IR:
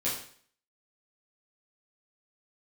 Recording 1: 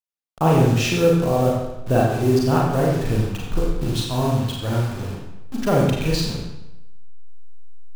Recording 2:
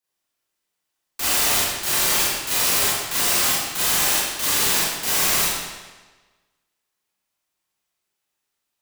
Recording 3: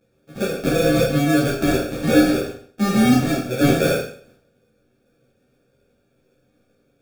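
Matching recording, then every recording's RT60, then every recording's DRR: 3; 0.95 s, 1.3 s, 0.50 s; -3.5 dB, -9.0 dB, -8.5 dB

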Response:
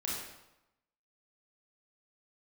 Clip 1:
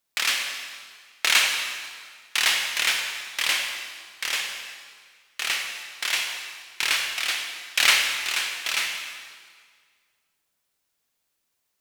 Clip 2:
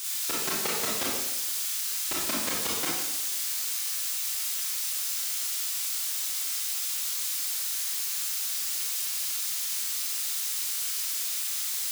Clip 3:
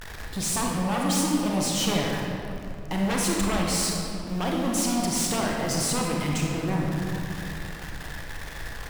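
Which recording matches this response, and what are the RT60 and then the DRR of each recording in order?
2; 1.8 s, 0.90 s, 2.7 s; 3.0 dB, -5.5 dB, -2.0 dB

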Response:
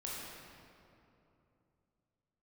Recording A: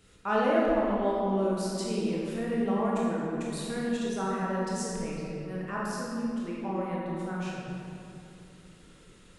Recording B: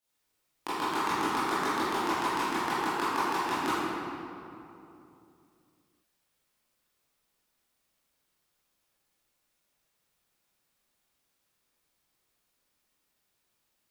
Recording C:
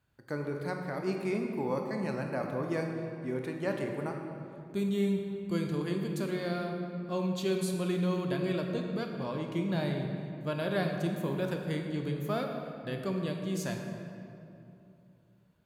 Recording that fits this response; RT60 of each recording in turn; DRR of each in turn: A; 2.9 s, 2.9 s, 2.9 s; -5.5 dB, -14.0 dB, 2.5 dB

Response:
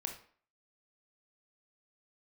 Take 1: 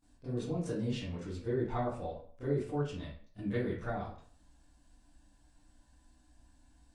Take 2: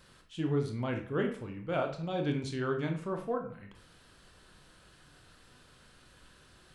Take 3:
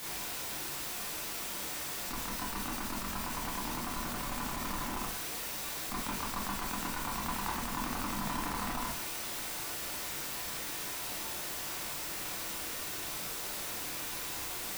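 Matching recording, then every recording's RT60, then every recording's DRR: 2; 0.50 s, 0.50 s, 0.50 s; -16.0 dB, 3.0 dB, -6.5 dB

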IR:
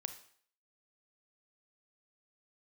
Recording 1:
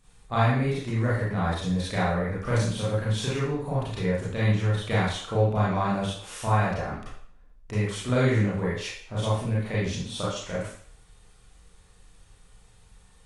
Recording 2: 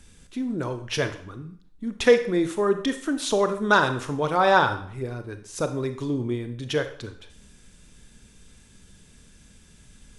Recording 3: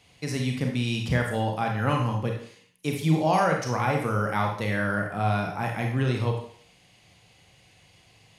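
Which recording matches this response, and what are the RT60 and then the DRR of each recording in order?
2; 0.55 s, 0.55 s, 0.55 s; -8.5 dB, 8.5 dB, 1.0 dB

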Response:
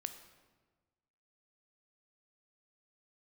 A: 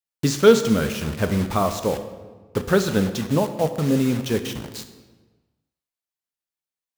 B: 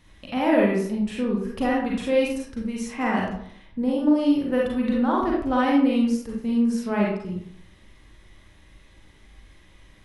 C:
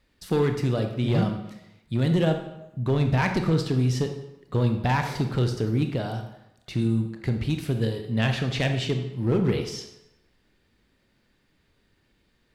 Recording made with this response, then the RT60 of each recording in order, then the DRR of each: A; 1.4 s, 0.65 s, 0.90 s; 8.5 dB, -4.0 dB, 5.5 dB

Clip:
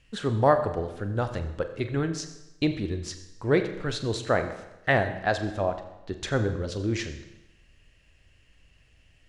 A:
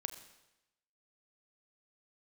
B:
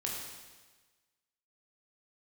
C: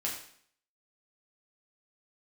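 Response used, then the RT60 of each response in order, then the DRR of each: A; 0.95 s, 1.3 s, 0.60 s; 7.5 dB, -3.0 dB, -4.5 dB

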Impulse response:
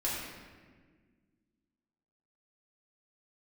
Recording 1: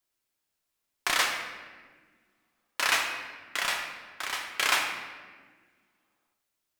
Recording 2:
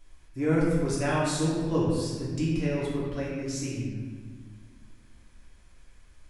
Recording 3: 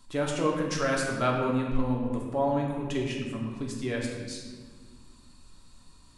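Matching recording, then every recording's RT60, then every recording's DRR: 2; 1.6 s, 1.6 s, 1.6 s; 2.5 dB, -7.5 dB, -2.0 dB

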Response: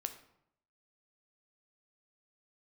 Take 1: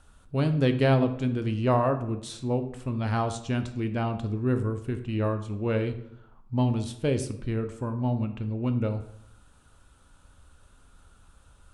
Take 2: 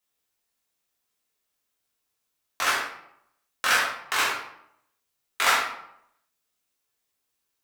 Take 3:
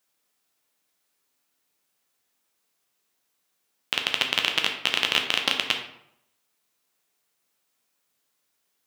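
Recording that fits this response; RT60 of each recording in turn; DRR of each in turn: 1; 0.75 s, 0.75 s, 0.75 s; 7.5 dB, -5.0 dB, 2.5 dB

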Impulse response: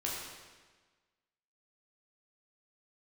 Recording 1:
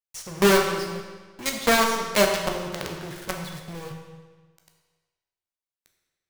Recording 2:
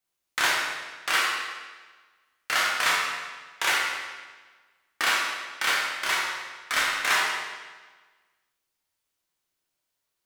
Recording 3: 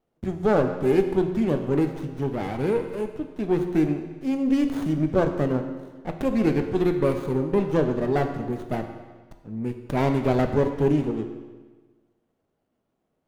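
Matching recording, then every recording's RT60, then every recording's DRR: 2; 1.4 s, 1.4 s, 1.4 s; 1.5 dB, -5.0 dB, 5.5 dB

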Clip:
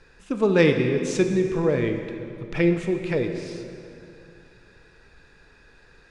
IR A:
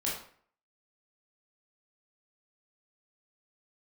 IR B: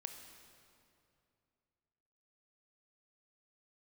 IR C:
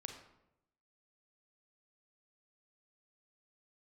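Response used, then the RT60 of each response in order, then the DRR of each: B; 0.55 s, 2.6 s, 0.85 s; -6.0 dB, 5.5 dB, 4.0 dB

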